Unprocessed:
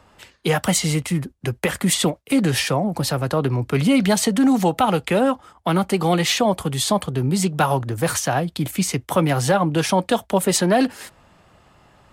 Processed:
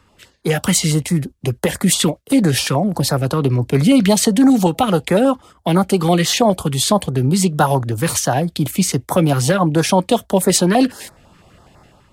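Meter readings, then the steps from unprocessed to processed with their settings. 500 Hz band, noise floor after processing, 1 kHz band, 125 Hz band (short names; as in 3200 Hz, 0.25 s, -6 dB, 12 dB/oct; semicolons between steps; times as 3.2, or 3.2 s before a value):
+3.5 dB, -55 dBFS, +2.0 dB, +5.0 dB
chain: AGC gain up to 7 dB; stepped notch 12 Hz 680–2900 Hz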